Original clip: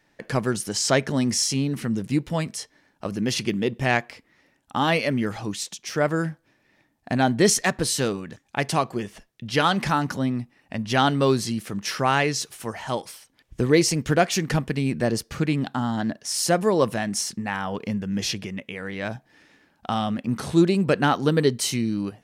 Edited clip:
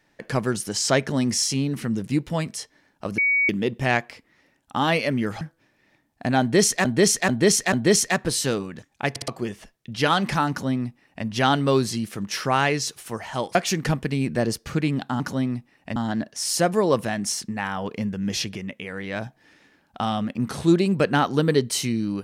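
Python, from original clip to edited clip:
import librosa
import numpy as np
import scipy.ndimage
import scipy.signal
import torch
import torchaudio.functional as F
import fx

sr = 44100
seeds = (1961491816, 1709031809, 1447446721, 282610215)

y = fx.edit(x, sr, fx.bleep(start_s=3.18, length_s=0.31, hz=2250.0, db=-17.0),
    fx.cut(start_s=5.41, length_s=0.86),
    fx.repeat(start_s=7.27, length_s=0.44, count=4),
    fx.stutter_over(start_s=8.64, slice_s=0.06, count=3),
    fx.duplicate(start_s=10.04, length_s=0.76, to_s=15.85),
    fx.cut(start_s=13.09, length_s=1.11), tone=tone)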